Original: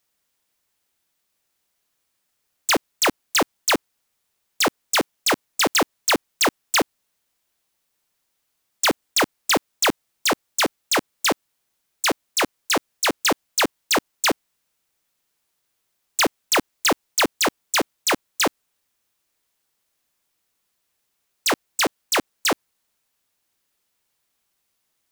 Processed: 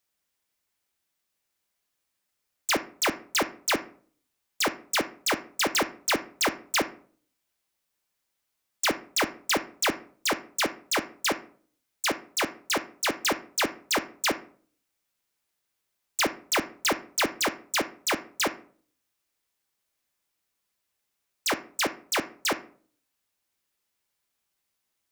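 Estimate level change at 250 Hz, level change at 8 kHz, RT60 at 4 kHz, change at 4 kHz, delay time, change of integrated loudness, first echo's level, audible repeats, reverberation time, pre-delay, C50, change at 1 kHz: −6.0 dB, −6.5 dB, 0.30 s, −6.0 dB, no echo audible, −6.0 dB, no echo audible, no echo audible, 0.50 s, 3 ms, 14.0 dB, −6.0 dB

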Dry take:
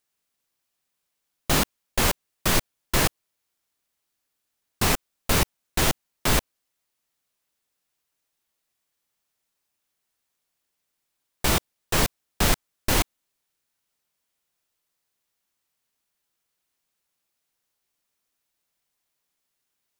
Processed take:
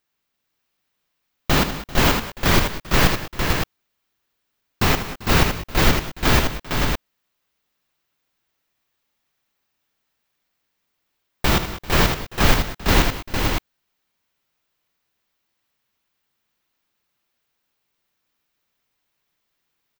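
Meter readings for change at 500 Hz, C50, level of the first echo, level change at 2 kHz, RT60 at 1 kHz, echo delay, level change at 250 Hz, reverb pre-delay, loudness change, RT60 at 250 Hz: +6.0 dB, no reverb audible, −10.0 dB, +6.5 dB, no reverb audible, 74 ms, +7.0 dB, no reverb audible, +4.0 dB, no reverb audible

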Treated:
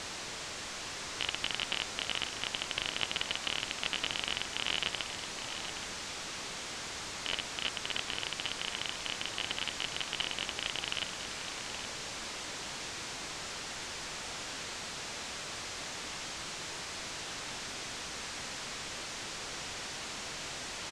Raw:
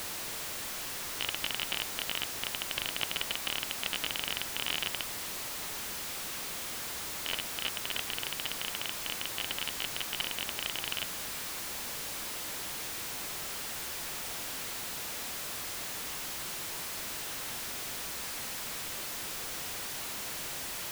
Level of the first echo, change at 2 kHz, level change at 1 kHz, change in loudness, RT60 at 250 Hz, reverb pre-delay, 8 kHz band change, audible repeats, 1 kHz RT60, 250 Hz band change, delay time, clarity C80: −10.0 dB, +0.5 dB, +0.5 dB, −2.0 dB, no reverb audible, no reverb audible, −3.0 dB, 1, no reverb audible, +0.5 dB, 822 ms, no reverb audible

